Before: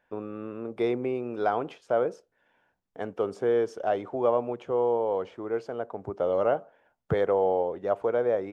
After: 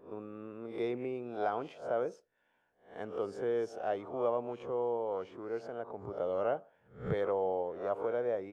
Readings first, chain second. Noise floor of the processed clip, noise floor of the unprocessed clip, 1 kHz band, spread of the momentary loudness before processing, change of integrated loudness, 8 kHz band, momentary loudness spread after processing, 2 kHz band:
-75 dBFS, -74 dBFS, -7.5 dB, 11 LU, -8.0 dB, n/a, 10 LU, -7.0 dB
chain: spectral swells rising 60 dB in 0.40 s; gain -8.5 dB

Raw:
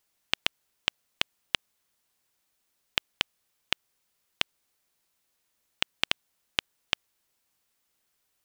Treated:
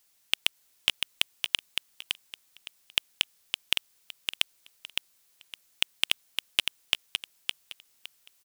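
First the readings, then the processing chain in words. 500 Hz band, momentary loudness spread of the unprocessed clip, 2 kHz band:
-5.5 dB, 3 LU, +1.5 dB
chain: high shelf 2400 Hz +8.5 dB; hard clip -7 dBFS, distortion -8 dB; feedback echo 0.562 s, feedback 24%, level -5 dB; gain +1 dB

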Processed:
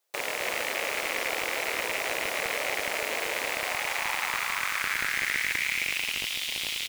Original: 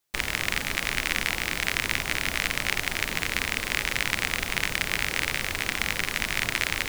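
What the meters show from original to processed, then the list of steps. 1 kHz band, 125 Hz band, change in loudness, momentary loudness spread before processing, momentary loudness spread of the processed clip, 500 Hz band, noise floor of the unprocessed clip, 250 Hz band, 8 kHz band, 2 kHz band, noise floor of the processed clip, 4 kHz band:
+1.5 dB, -15.5 dB, -2.0 dB, 2 LU, 3 LU, +4.0 dB, -35 dBFS, -8.0 dB, -2.0 dB, -2.0 dB, -34 dBFS, -2.5 dB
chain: loudspeakers at several distances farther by 37 m -12 dB, 94 m -7 dB; high-pass sweep 520 Hz -> 3200 Hz, 3.29–6.4; slew limiter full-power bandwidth 210 Hz

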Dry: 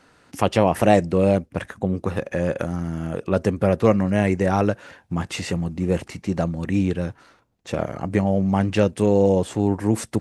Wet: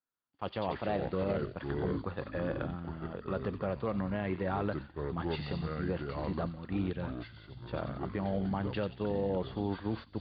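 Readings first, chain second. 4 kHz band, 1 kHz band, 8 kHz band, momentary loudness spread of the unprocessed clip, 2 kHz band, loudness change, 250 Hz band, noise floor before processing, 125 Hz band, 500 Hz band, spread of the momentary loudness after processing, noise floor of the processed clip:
-11.5 dB, -12.5 dB, under -40 dB, 10 LU, -12.0 dB, -13.5 dB, -14.0 dB, -57 dBFS, -13.0 dB, -14.0 dB, 6 LU, -58 dBFS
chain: echoes that change speed 0.122 s, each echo -5 st, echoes 3, each echo -6 dB; limiter -10.5 dBFS, peak gain reduction 9 dB; rippled Chebyshev low-pass 4700 Hz, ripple 6 dB; thin delay 90 ms, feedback 62%, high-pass 3500 Hz, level -4 dB; expander -27 dBFS; gain -7 dB

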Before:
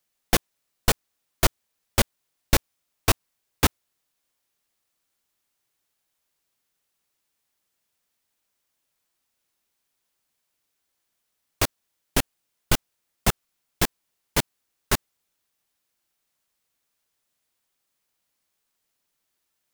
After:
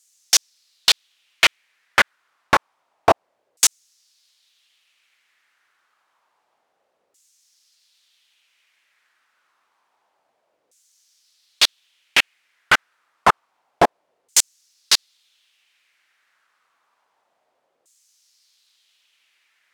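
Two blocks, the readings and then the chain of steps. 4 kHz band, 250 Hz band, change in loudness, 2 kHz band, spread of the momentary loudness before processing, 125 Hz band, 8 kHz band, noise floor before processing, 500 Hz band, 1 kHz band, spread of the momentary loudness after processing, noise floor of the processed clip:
+10.0 dB, -3.5 dB, +7.0 dB, +10.0 dB, 3 LU, -10.5 dB, +8.5 dB, -78 dBFS, +5.5 dB, +10.0 dB, 4 LU, -71 dBFS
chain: LFO band-pass saw down 0.28 Hz 510–7400 Hz; maximiser +25.5 dB; gain -1.5 dB

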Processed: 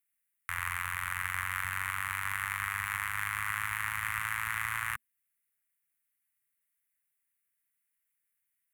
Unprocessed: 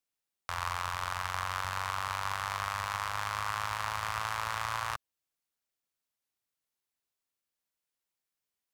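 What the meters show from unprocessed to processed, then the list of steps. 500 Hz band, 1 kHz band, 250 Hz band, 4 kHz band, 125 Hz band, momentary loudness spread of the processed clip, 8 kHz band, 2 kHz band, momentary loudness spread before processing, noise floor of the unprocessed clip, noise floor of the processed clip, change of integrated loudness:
under -15 dB, -4.5 dB, -2.5 dB, -5.0 dB, -2.0 dB, 2 LU, +2.0 dB, +5.0 dB, 2 LU, under -85 dBFS, -82 dBFS, +1.0 dB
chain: EQ curve 230 Hz 0 dB, 370 Hz -29 dB, 2000 Hz +11 dB, 4900 Hz -14 dB, 9900 Hz +11 dB; gain -2 dB

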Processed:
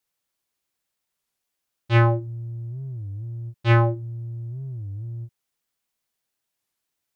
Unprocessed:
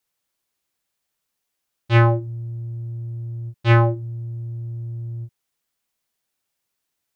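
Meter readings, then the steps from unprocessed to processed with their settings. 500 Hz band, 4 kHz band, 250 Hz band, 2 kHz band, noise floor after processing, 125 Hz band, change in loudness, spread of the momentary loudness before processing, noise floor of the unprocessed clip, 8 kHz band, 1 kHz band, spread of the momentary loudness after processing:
-2.5 dB, -2.5 dB, -2.5 dB, -2.5 dB, -82 dBFS, -2.5 dB, -2.5 dB, 15 LU, -79 dBFS, n/a, -2.5 dB, 15 LU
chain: record warp 33 1/3 rpm, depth 250 cents; gain -2.5 dB

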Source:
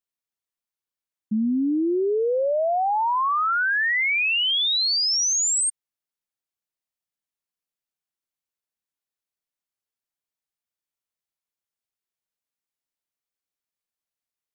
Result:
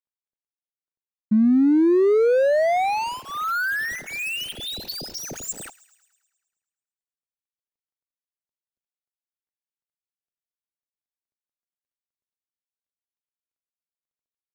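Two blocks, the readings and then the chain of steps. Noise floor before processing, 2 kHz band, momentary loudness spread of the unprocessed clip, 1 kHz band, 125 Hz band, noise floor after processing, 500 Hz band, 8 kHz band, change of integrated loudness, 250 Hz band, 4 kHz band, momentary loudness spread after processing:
under -85 dBFS, -4.0 dB, 4 LU, -2.5 dB, n/a, under -85 dBFS, +4.5 dB, -12.5 dB, -1.0 dB, +5.5 dB, -11.0 dB, 14 LU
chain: median filter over 41 samples; thin delay 0.107 s, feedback 61%, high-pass 1500 Hz, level -19.5 dB; gain +6 dB

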